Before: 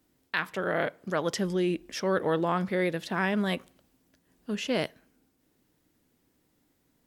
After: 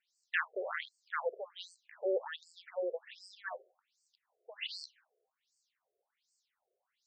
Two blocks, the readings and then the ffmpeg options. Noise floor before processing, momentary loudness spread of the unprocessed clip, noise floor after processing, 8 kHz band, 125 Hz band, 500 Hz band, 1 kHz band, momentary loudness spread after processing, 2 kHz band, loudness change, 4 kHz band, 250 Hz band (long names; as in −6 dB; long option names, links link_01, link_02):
−72 dBFS, 7 LU, below −85 dBFS, −18.5 dB, below −40 dB, −9.0 dB, −11.5 dB, 15 LU, −7.0 dB, −10.0 dB, −8.0 dB, −22.0 dB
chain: -af "aemphasis=mode=production:type=50kf,afftfilt=real='re*between(b*sr/1024,490*pow(6200/490,0.5+0.5*sin(2*PI*1.3*pts/sr))/1.41,490*pow(6200/490,0.5+0.5*sin(2*PI*1.3*pts/sr))*1.41)':imag='im*between(b*sr/1024,490*pow(6200/490,0.5+0.5*sin(2*PI*1.3*pts/sr))/1.41,490*pow(6200/490,0.5+0.5*sin(2*PI*1.3*pts/sr))*1.41)':win_size=1024:overlap=0.75,volume=-3dB"